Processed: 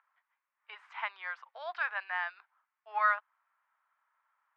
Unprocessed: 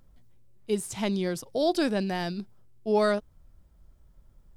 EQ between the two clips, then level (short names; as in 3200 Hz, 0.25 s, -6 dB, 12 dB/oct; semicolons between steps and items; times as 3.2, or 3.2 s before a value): steep high-pass 990 Hz 36 dB/oct; LPF 2000 Hz 24 dB/oct; +6.0 dB